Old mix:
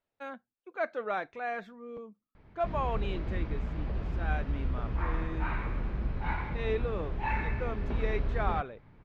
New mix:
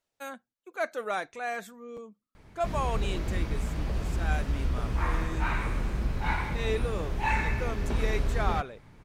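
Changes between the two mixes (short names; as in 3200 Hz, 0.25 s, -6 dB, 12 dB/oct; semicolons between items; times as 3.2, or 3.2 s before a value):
background +3.0 dB; master: remove air absorption 300 m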